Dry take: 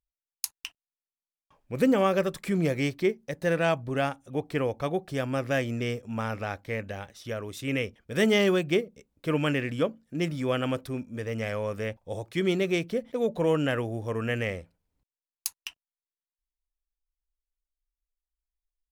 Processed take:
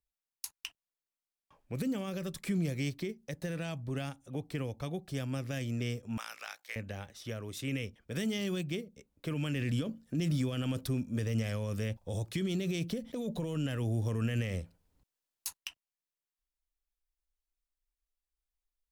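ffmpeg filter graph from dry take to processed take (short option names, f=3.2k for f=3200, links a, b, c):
-filter_complex "[0:a]asettb=1/sr,asplit=3[a][b][c];[a]atrim=end=6.174[d];[b]atrim=start=6.17:end=6.76,asetpts=PTS-STARTPTS,afade=t=in:d=0.004:c=qsin,afade=t=out:st=0.586:d=0.004:c=qsin,aeval=exprs='val(0)*sin(2*PI*30*n/s)':c=same,highpass=1.1k,highshelf=f=2.4k:g=9.5[e];[c]atrim=start=6.756[f];[d][e]acrossfade=d=0.004:c1=hsin:c2=qsin[g];[g][f]acrossfade=d=0.004:c1=qsin:c2=hsin,asettb=1/sr,asplit=3[h][i][j];[h]atrim=end=9.554[k];[i]atrim=start=9.55:end=15.57,asetpts=PTS-STARTPTS,afade=t=in:d=0.004:c=qsin,afade=t=out:st=6.016:d=0.004:c=qsin,equalizer=f=2.2k:t=o:w=0.29:g=-3,acontrast=84[l];[j]atrim=start=15.566[m];[k][l]acrossfade=d=0.004:c1=hsin:c2=qsin[n];[n][m]acrossfade=d=0.004:c1=qsin:c2=hsin,alimiter=limit=-19.5dB:level=0:latency=1:release=19,acrossover=split=240|3000[o][p][q];[p]acompressor=threshold=-40dB:ratio=6[r];[o][r][q]amix=inputs=3:normalize=0,volume=-1.5dB"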